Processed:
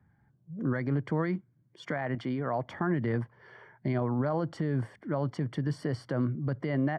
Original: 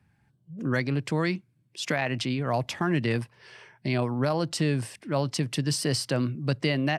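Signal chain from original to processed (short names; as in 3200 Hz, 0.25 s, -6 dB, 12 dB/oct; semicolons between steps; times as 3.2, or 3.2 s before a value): 2.15–2.68 low shelf 140 Hz -11 dB; limiter -20 dBFS, peak gain reduction 7.5 dB; polynomial smoothing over 41 samples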